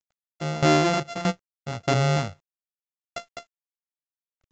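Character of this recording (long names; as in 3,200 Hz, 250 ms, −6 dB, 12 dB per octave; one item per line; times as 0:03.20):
a buzz of ramps at a fixed pitch in blocks of 64 samples
tremolo saw down 1.6 Hz, depth 85%
a quantiser's noise floor 12 bits, dither none
mu-law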